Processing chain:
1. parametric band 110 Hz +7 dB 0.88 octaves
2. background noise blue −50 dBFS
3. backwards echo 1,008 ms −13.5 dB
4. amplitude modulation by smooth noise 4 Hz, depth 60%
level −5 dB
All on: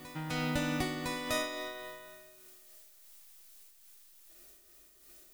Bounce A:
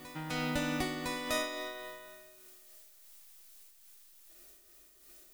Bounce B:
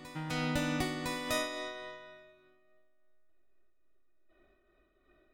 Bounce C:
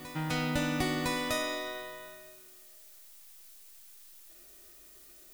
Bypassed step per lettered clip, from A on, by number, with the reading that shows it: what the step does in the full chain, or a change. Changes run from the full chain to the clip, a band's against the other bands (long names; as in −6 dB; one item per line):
1, 125 Hz band −3.0 dB
2, change in momentary loudness spread −7 LU
4, change in momentary loudness spread −1 LU